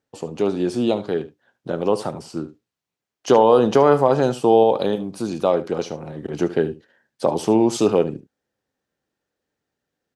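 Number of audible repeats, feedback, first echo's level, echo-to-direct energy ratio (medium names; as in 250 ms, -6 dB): 1, no regular repeats, -15.5 dB, -15.5 dB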